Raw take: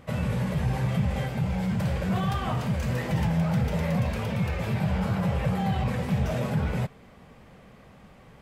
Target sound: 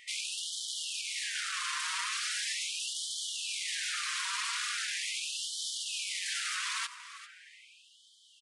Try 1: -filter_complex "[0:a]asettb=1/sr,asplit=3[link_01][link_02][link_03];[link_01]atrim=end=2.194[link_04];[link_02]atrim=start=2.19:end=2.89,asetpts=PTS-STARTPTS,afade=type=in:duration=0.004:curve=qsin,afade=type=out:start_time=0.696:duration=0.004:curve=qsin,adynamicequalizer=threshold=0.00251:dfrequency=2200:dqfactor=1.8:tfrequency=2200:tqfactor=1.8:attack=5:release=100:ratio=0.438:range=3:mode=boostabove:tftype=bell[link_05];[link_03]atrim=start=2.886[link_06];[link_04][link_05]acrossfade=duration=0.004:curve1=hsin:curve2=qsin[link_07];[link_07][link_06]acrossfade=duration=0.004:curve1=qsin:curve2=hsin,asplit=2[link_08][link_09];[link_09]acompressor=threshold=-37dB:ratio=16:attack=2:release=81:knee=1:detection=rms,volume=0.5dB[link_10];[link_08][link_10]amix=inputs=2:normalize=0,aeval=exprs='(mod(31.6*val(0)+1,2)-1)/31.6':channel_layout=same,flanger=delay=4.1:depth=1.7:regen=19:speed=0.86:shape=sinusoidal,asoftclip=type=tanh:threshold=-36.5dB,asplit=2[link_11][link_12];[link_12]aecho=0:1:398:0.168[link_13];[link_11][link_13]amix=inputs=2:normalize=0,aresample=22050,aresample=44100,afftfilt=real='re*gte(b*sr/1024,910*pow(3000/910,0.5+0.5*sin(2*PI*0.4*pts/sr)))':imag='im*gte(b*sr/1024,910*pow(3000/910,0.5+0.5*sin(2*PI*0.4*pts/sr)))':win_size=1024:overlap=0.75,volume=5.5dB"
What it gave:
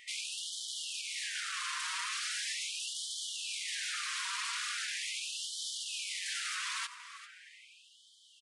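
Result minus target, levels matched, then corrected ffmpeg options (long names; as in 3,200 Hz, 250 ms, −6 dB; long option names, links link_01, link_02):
soft clipping: distortion +18 dB
-filter_complex "[0:a]asettb=1/sr,asplit=3[link_01][link_02][link_03];[link_01]atrim=end=2.194[link_04];[link_02]atrim=start=2.19:end=2.89,asetpts=PTS-STARTPTS,afade=type=in:duration=0.004:curve=qsin,afade=type=out:start_time=0.696:duration=0.004:curve=qsin,adynamicequalizer=threshold=0.00251:dfrequency=2200:dqfactor=1.8:tfrequency=2200:tqfactor=1.8:attack=5:release=100:ratio=0.438:range=3:mode=boostabove:tftype=bell[link_05];[link_03]atrim=start=2.886[link_06];[link_04][link_05]acrossfade=duration=0.004:curve1=hsin:curve2=qsin[link_07];[link_07][link_06]acrossfade=duration=0.004:curve1=qsin:curve2=hsin,asplit=2[link_08][link_09];[link_09]acompressor=threshold=-37dB:ratio=16:attack=2:release=81:knee=1:detection=rms,volume=0.5dB[link_10];[link_08][link_10]amix=inputs=2:normalize=0,aeval=exprs='(mod(31.6*val(0)+1,2)-1)/31.6':channel_layout=same,flanger=delay=4.1:depth=1.7:regen=19:speed=0.86:shape=sinusoidal,asoftclip=type=tanh:threshold=-25.5dB,asplit=2[link_11][link_12];[link_12]aecho=0:1:398:0.168[link_13];[link_11][link_13]amix=inputs=2:normalize=0,aresample=22050,aresample=44100,afftfilt=real='re*gte(b*sr/1024,910*pow(3000/910,0.5+0.5*sin(2*PI*0.4*pts/sr)))':imag='im*gte(b*sr/1024,910*pow(3000/910,0.5+0.5*sin(2*PI*0.4*pts/sr)))':win_size=1024:overlap=0.75,volume=5.5dB"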